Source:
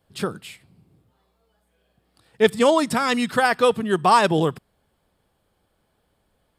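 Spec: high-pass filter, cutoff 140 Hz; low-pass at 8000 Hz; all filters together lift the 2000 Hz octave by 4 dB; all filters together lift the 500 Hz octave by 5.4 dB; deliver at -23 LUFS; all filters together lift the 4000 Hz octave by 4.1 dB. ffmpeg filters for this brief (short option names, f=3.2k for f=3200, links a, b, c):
-af "highpass=140,lowpass=8k,equalizer=f=500:t=o:g=6,equalizer=f=2k:t=o:g=4,equalizer=f=4k:t=o:g=4,volume=-7dB"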